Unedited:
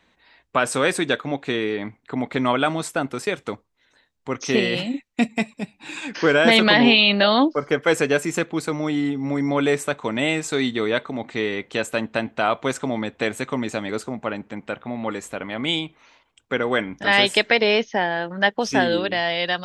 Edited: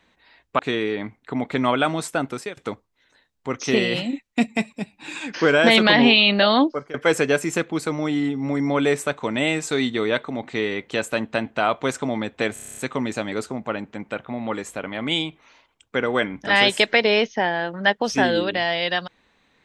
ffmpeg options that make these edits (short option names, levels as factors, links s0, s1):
-filter_complex "[0:a]asplit=12[s0][s1][s2][s3][s4][s5][s6][s7][s8][s9][s10][s11];[s0]atrim=end=0.592[s12];[s1]atrim=start=1.398:end=3.38,asetpts=PTS-STARTPTS,afade=t=out:st=1.722:d=0.26:silence=0.125893[s13];[s2]atrim=start=3.38:end=7.75,asetpts=PTS-STARTPTS,afade=t=in:d=0.004:c=hsin:silence=0.125893,afade=t=out:st=4.07:d=0.3:silence=0.0841395[s14];[s3]atrim=start=7.75:end=13.372,asetpts=PTS-STARTPTS,afade=t=in:d=0.004:c=hsin:silence=0.0841395[s15];[s4]atrim=start=13.338:end=13.372[s16];[s5]atrim=start=13.338:end=13.372[s17];[s6]atrim=start=13.338:end=13.372[s18];[s7]atrim=start=13.338:end=13.372[s19];[s8]atrim=start=13.338:end=13.372[s20];[s9]atrim=start=13.338:end=13.372[s21];[s10]atrim=start=13.338:end=13.372[s22];[s11]atrim=start=13.338[s23];[s13][s14][s15]concat=n=3:v=0:a=1[s24];[s12][s24]acrossfade=d=0.004:c1=hsin:c2=hsin[s25];[s25][s16]acrossfade=d=0.004:c1=hsin:c2=hsin[s26];[s26][s17]acrossfade=d=0.004:c1=hsin:c2=hsin[s27];[s27][s18]acrossfade=d=0.004:c1=hsin:c2=hsin[s28];[s28][s19]acrossfade=d=0.004:c1=hsin:c2=hsin[s29];[s29][s20]acrossfade=d=0.004:c1=hsin:c2=hsin[s30];[s30][s21]acrossfade=d=0.004:c1=hsin:c2=hsin[s31];[s31][s22]acrossfade=d=0.004:c1=hsin:c2=hsin[s32];[s32][s23]acrossfade=d=0.004:c1=hsin:c2=hsin"